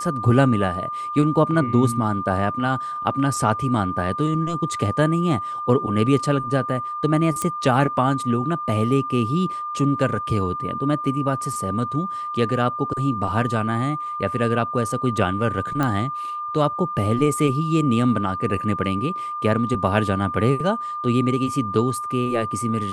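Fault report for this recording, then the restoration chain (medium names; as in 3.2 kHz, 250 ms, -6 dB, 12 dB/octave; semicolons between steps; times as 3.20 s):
whine 1.2 kHz -26 dBFS
7.42 s: pop -10 dBFS
15.83 s: pop -10 dBFS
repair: de-click; band-stop 1.2 kHz, Q 30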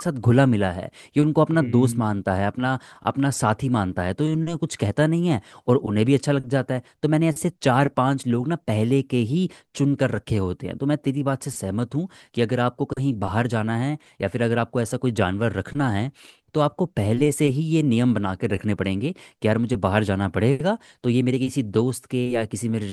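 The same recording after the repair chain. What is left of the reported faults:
nothing left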